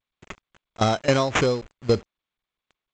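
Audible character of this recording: aliases and images of a low sample rate 4600 Hz, jitter 0%; tremolo saw down 3.7 Hz, depth 85%; a quantiser's noise floor 8-bit, dither none; G.722

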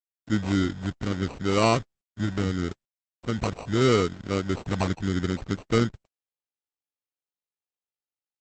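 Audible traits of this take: a quantiser's noise floor 8-bit, dither none; phasing stages 12, 0.77 Hz, lowest notch 520–1600 Hz; aliases and images of a low sample rate 1700 Hz, jitter 0%; Opus

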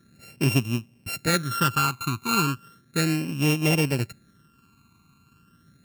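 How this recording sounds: a buzz of ramps at a fixed pitch in blocks of 32 samples; phasing stages 12, 0.35 Hz, lowest notch 560–1400 Hz

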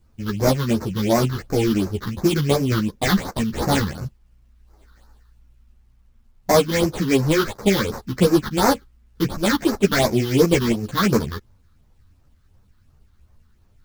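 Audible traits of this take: aliases and images of a low sample rate 2800 Hz, jitter 20%; phasing stages 6, 2.8 Hz, lowest notch 610–3200 Hz; a quantiser's noise floor 12-bit, dither none; a shimmering, thickened sound

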